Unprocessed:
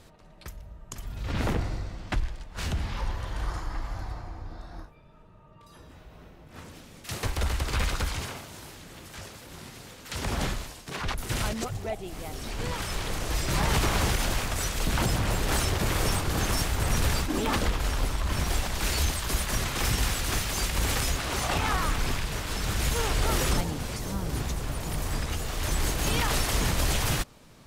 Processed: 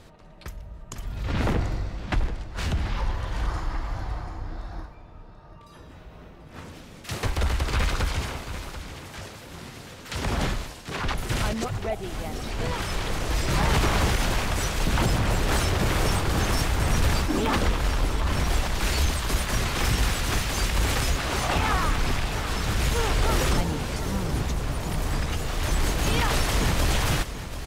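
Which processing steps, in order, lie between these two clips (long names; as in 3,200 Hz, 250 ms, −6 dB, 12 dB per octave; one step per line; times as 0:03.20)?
single-tap delay 737 ms −12.5 dB
in parallel at −7.5 dB: soft clipping −23.5 dBFS, distortion −13 dB
on the sum: high-shelf EQ 6,100 Hz −7 dB
level +1 dB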